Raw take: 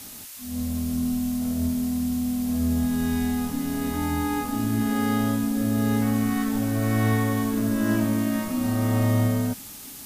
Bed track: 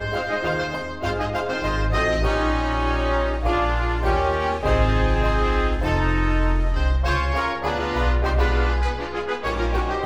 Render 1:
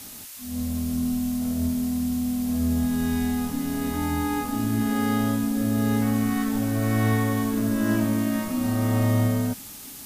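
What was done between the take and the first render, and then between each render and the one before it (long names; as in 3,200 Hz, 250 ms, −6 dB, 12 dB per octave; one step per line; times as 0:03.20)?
no processing that can be heard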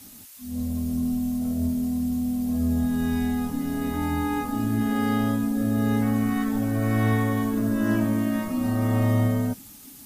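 broadband denoise 8 dB, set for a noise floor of −41 dBFS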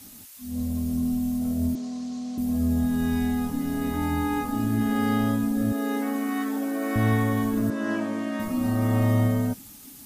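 0:01.75–0:02.38: loudspeaker in its box 340–6,800 Hz, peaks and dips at 1,100 Hz +4 dB, 4,300 Hz +6 dB, 6,200 Hz +5 dB
0:05.72–0:06.96: linear-phase brick-wall high-pass 230 Hz
0:07.70–0:08.40: band-pass filter 310–6,500 Hz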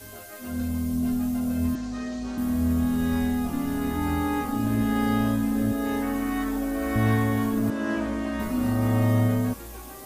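mix in bed track −19.5 dB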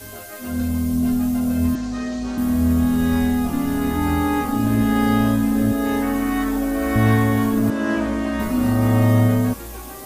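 level +6 dB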